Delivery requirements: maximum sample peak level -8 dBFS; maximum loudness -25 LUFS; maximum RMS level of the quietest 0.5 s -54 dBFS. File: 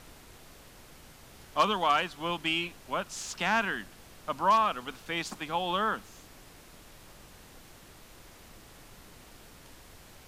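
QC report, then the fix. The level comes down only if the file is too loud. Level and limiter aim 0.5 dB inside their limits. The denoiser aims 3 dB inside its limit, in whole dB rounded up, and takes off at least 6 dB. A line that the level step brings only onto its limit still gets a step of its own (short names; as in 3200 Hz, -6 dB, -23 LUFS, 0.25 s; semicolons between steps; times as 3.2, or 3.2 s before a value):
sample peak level -10.5 dBFS: OK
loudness -29.5 LUFS: OK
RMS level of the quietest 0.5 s -52 dBFS: fail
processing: denoiser 6 dB, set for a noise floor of -52 dBFS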